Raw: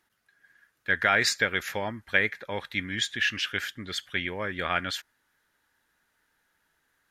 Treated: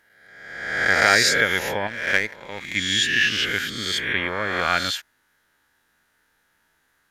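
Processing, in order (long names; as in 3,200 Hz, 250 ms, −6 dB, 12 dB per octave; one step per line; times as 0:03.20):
peak hold with a rise ahead of every peak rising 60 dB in 1.15 s
0:01.87–0:02.76: power curve on the samples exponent 1.4
level +3 dB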